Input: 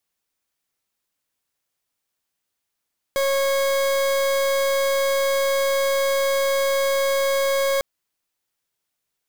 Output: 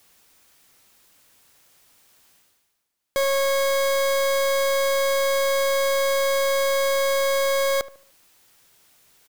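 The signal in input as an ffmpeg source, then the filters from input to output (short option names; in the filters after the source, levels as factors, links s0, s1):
-f lavfi -i "aevalsrc='0.0944*(2*lt(mod(548*t,1),0.4)-1)':d=4.65:s=44100"
-filter_complex "[0:a]areverse,acompressor=mode=upward:threshold=0.0112:ratio=2.5,areverse,asplit=2[s0][s1];[s1]adelay=74,lowpass=f=1500:p=1,volume=0.158,asplit=2[s2][s3];[s3]adelay=74,lowpass=f=1500:p=1,volume=0.4,asplit=2[s4][s5];[s5]adelay=74,lowpass=f=1500:p=1,volume=0.4,asplit=2[s6][s7];[s7]adelay=74,lowpass=f=1500:p=1,volume=0.4[s8];[s0][s2][s4][s6][s8]amix=inputs=5:normalize=0"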